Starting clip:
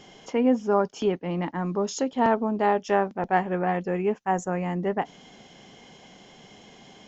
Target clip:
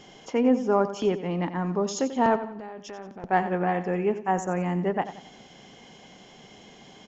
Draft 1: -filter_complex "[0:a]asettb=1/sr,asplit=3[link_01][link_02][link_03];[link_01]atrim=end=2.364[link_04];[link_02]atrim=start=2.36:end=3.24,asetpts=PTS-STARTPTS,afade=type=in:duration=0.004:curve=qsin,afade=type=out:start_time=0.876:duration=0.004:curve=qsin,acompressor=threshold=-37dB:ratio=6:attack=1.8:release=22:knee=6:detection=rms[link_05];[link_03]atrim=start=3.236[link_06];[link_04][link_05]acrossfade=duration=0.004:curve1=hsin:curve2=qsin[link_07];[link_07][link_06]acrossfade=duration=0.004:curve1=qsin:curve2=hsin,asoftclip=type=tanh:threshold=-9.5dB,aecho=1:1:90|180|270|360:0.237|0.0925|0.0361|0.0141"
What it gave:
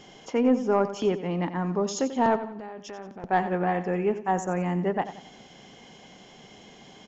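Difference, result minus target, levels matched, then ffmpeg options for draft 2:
soft clipping: distortion +11 dB
-filter_complex "[0:a]asettb=1/sr,asplit=3[link_01][link_02][link_03];[link_01]atrim=end=2.364[link_04];[link_02]atrim=start=2.36:end=3.24,asetpts=PTS-STARTPTS,afade=type=in:duration=0.004:curve=qsin,afade=type=out:start_time=0.876:duration=0.004:curve=qsin,acompressor=threshold=-37dB:ratio=6:attack=1.8:release=22:knee=6:detection=rms[link_05];[link_03]atrim=start=3.236[link_06];[link_04][link_05]acrossfade=duration=0.004:curve1=hsin:curve2=qsin[link_07];[link_07][link_06]acrossfade=duration=0.004:curve1=qsin:curve2=hsin,asoftclip=type=tanh:threshold=-3dB,aecho=1:1:90|180|270|360:0.237|0.0925|0.0361|0.0141"

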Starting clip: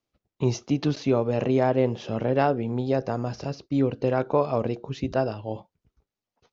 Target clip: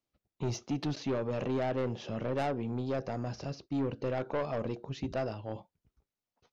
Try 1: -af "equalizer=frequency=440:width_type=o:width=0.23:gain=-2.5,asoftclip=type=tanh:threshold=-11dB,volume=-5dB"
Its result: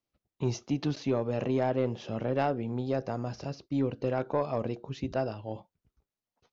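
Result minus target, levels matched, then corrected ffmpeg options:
soft clipping: distortion −13 dB
-af "equalizer=frequency=440:width_type=o:width=0.23:gain=-2.5,asoftclip=type=tanh:threshold=-21.5dB,volume=-5dB"

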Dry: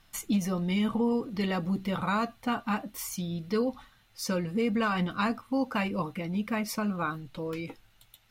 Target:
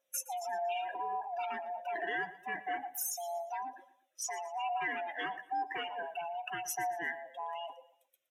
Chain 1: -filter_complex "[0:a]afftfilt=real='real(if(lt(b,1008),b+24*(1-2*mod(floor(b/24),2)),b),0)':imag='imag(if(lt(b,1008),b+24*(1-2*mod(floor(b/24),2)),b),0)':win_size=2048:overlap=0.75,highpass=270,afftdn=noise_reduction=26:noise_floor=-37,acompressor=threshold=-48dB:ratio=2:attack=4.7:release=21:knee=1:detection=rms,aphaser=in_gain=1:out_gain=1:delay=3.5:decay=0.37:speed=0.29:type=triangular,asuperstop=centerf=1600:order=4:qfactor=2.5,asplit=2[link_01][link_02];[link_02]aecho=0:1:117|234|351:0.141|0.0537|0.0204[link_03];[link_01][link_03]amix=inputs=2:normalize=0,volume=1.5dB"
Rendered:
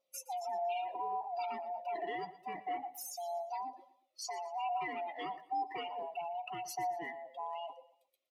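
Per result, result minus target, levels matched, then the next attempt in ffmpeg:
2,000 Hz band −7.0 dB; 8,000 Hz band −5.5 dB
-filter_complex "[0:a]afftfilt=real='real(if(lt(b,1008),b+24*(1-2*mod(floor(b/24),2)),b),0)':imag='imag(if(lt(b,1008),b+24*(1-2*mod(floor(b/24),2)),b),0)':win_size=2048:overlap=0.75,highpass=270,afftdn=noise_reduction=26:noise_floor=-37,acompressor=threshold=-48dB:ratio=2:attack=4.7:release=21:knee=1:detection=rms,aphaser=in_gain=1:out_gain=1:delay=3.5:decay=0.37:speed=0.29:type=triangular,asuperstop=centerf=4500:order=4:qfactor=2.5,asplit=2[link_01][link_02];[link_02]aecho=0:1:117|234|351:0.141|0.0537|0.0204[link_03];[link_01][link_03]amix=inputs=2:normalize=0,volume=1.5dB"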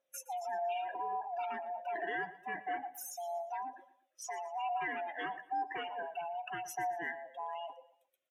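8,000 Hz band −6.5 dB
-filter_complex "[0:a]afftfilt=real='real(if(lt(b,1008),b+24*(1-2*mod(floor(b/24),2)),b),0)':imag='imag(if(lt(b,1008),b+24*(1-2*mod(floor(b/24),2)),b),0)':win_size=2048:overlap=0.75,highpass=270,afftdn=noise_reduction=26:noise_floor=-37,acompressor=threshold=-48dB:ratio=2:attack=4.7:release=21:knee=1:detection=rms,highshelf=frequency=2900:gain=9.5,aphaser=in_gain=1:out_gain=1:delay=3.5:decay=0.37:speed=0.29:type=triangular,asuperstop=centerf=4500:order=4:qfactor=2.5,asplit=2[link_01][link_02];[link_02]aecho=0:1:117|234|351:0.141|0.0537|0.0204[link_03];[link_01][link_03]amix=inputs=2:normalize=0,volume=1.5dB"

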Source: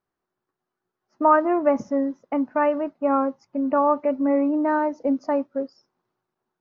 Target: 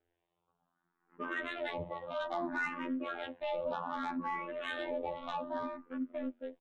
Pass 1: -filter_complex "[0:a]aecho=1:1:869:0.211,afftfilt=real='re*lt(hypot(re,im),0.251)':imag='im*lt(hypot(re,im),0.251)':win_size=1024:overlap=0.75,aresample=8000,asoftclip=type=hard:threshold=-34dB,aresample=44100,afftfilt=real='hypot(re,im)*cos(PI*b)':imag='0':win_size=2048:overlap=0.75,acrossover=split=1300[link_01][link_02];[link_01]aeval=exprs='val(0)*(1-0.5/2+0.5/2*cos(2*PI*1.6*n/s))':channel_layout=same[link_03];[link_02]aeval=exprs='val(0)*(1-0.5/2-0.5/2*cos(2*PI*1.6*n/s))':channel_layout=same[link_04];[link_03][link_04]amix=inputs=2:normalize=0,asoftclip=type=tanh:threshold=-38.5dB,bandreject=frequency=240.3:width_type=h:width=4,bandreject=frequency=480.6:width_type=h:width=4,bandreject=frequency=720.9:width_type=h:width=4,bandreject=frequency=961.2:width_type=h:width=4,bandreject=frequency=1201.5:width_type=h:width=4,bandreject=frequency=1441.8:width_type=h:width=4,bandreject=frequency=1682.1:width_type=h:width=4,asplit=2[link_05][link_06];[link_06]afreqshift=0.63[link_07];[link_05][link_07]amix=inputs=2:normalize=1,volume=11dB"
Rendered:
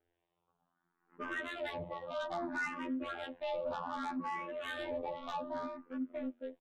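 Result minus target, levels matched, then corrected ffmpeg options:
soft clipping: distortion +7 dB
-filter_complex "[0:a]aecho=1:1:869:0.211,afftfilt=real='re*lt(hypot(re,im),0.251)':imag='im*lt(hypot(re,im),0.251)':win_size=1024:overlap=0.75,aresample=8000,asoftclip=type=hard:threshold=-34dB,aresample=44100,afftfilt=real='hypot(re,im)*cos(PI*b)':imag='0':win_size=2048:overlap=0.75,acrossover=split=1300[link_01][link_02];[link_01]aeval=exprs='val(0)*(1-0.5/2+0.5/2*cos(2*PI*1.6*n/s))':channel_layout=same[link_03];[link_02]aeval=exprs='val(0)*(1-0.5/2-0.5/2*cos(2*PI*1.6*n/s))':channel_layout=same[link_04];[link_03][link_04]amix=inputs=2:normalize=0,asoftclip=type=tanh:threshold=-32dB,bandreject=frequency=240.3:width_type=h:width=4,bandreject=frequency=480.6:width_type=h:width=4,bandreject=frequency=720.9:width_type=h:width=4,bandreject=frequency=961.2:width_type=h:width=4,bandreject=frequency=1201.5:width_type=h:width=4,bandreject=frequency=1441.8:width_type=h:width=4,bandreject=frequency=1682.1:width_type=h:width=4,asplit=2[link_05][link_06];[link_06]afreqshift=0.63[link_07];[link_05][link_07]amix=inputs=2:normalize=1,volume=11dB"

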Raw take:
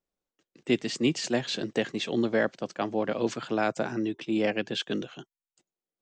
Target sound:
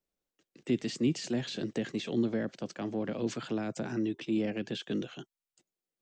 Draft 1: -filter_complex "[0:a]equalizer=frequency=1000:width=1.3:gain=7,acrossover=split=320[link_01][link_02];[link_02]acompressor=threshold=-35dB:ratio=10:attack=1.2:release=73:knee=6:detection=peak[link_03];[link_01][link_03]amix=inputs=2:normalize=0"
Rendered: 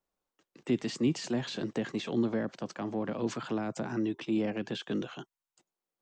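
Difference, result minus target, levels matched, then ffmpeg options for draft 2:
1,000 Hz band +4.0 dB
-filter_complex "[0:a]equalizer=frequency=1000:width=1.3:gain=-3.5,acrossover=split=320[link_01][link_02];[link_02]acompressor=threshold=-35dB:ratio=10:attack=1.2:release=73:knee=6:detection=peak[link_03];[link_01][link_03]amix=inputs=2:normalize=0"

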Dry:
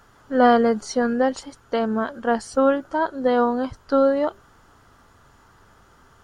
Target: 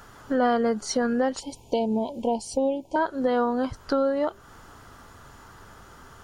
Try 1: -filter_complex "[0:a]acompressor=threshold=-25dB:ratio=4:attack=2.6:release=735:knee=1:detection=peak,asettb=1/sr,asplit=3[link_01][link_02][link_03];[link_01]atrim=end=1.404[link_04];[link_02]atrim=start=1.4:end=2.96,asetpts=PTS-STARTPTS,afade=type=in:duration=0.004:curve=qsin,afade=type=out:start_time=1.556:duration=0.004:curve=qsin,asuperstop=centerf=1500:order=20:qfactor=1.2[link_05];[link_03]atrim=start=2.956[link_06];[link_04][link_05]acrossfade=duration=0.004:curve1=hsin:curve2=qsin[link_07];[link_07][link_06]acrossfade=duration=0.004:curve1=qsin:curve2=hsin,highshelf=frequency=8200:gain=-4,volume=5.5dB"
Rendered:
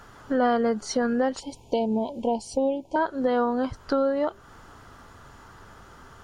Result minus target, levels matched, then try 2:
8,000 Hz band −3.0 dB
-filter_complex "[0:a]acompressor=threshold=-25dB:ratio=4:attack=2.6:release=735:knee=1:detection=peak,asettb=1/sr,asplit=3[link_01][link_02][link_03];[link_01]atrim=end=1.404[link_04];[link_02]atrim=start=1.4:end=2.96,asetpts=PTS-STARTPTS,afade=type=in:duration=0.004:curve=qsin,afade=type=out:start_time=1.556:duration=0.004:curve=qsin,asuperstop=centerf=1500:order=20:qfactor=1.2[link_05];[link_03]atrim=start=2.956[link_06];[link_04][link_05]acrossfade=duration=0.004:curve1=hsin:curve2=qsin[link_07];[link_07][link_06]acrossfade=duration=0.004:curve1=qsin:curve2=hsin,highshelf=frequency=8200:gain=4,volume=5.5dB"

